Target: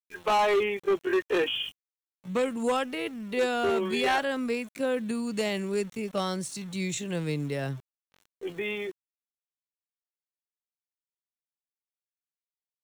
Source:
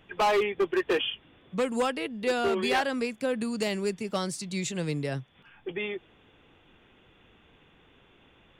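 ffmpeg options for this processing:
-af "aeval=exprs='val(0)*gte(abs(val(0)),0.00501)':c=same,atempo=0.67,bandreject=f=4.8k:w=8.3"

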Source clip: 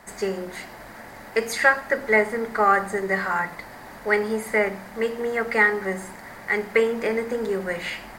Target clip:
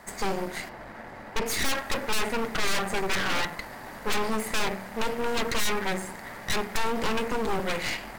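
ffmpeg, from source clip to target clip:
-filter_complex "[0:a]asettb=1/sr,asplit=3[a][b][c];[a]atrim=end=0.694[d];[b]atrim=start=0.69:end=1.46,asetpts=PTS-STARTPTS,afade=t=in:d=0.004:c=qsin,afade=t=out:st=0.766:d=0.004:c=qsin,lowpass=f=2.1k:p=1[e];[c]atrim=start=1.456[f];[d][e]acrossfade=d=0.004:c1=hsin:c2=qsin[g];[g][f]acrossfade=d=0.004:c1=qsin:c2=hsin,aeval=exprs='0.668*(cos(1*acos(clip(val(0)/0.668,-1,1)))-cos(1*PI/2))+0.299*(cos(4*acos(clip(val(0)/0.668,-1,1)))-cos(4*PI/2))+0.168*(cos(8*acos(clip(val(0)/0.668,-1,1)))-cos(8*PI/2))':c=same,volume=20.5dB,asoftclip=hard,volume=-20.5dB"

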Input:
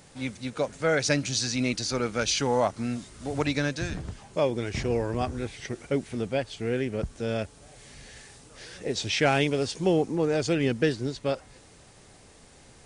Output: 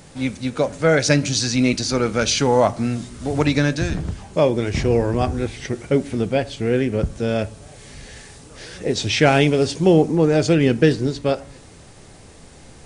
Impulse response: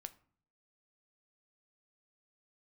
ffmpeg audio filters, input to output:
-filter_complex "[0:a]asplit=2[a][b];[1:a]atrim=start_sample=2205,lowshelf=f=500:g=6[c];[b][c]afir=irnorm=-1:irlink=0,volume=11dB[d];[a][d]amix=inputs=2:normalize=0,volume=-3dB"

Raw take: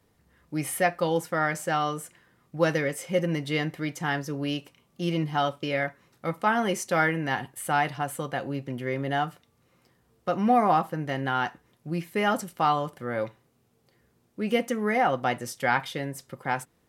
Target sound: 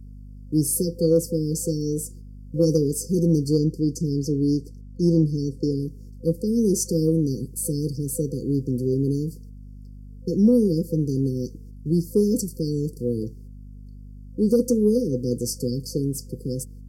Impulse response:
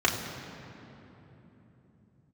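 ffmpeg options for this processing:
-filter_complex "[0:a]agate=range=-10dB:threshold=-55dB:ratio=16:detection=peak,asettb=1/sr,asplit=3[a][b][c];[a]atrim=end=3.584[d];[b]atrim=start=3.58:end=5.8,asetpts=PTS-STARTPTS,afade=t=in:d=0.004:c=qsin,afade=t=out:st=2.216:d=0.004:c=qsin,highshelf=f=10k:g=-11.5[e];[c]atrim=start=5.796[f];[d][e]acrossfade=d=0.004:c1=hsin:c2=qsin[g];[g][f]acrossfade=d=0.004:c1=qsin:c2=hsin,afftfilt=real='re*(1-between(b*sr/4096,510,4400))':imag='im*(1-between(b*sr/4096,510,4400))':win_size=4096:overlap=0.75,acontrast=69,aeval=exprs='val(0)+0.00794*(sin(2*PI*50*n/s)+sin(2*PI*2*50*n/s)/2+sin(2*PI*3*50*n/s)/3+sin(2*PI*4*50*n/s)/4+sin(2*PI*5*50*n/s)/5)':c=same,alimiter=level_in=11dB:limit=-1dB:release=50:level=0:latency=1,volume=-8.5dB"

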